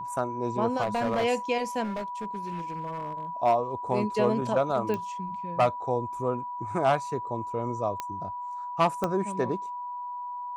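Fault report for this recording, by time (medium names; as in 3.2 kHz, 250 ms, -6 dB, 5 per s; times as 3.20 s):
whine 980 Hz -33 dBFS
0.81–1.25 s: clipped -22.5 dBFS
1.83–3.25 s: clipped -29 dBFS
4.94 s: pop -19 dBFS
8.00 s: pop -17 dBFS
9.04 s: pop -14 dBFS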